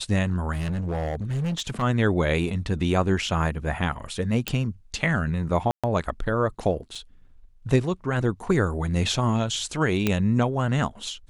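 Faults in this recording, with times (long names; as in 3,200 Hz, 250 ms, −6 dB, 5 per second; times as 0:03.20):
0:00.52–0:01.83: clipping −23.5 dBFS
0:04.48: click
0:05.71–0:05.84: drop-out 126 ms
0:06.95: drop-out 4.8 ms
0:10.07: click −8 dBFS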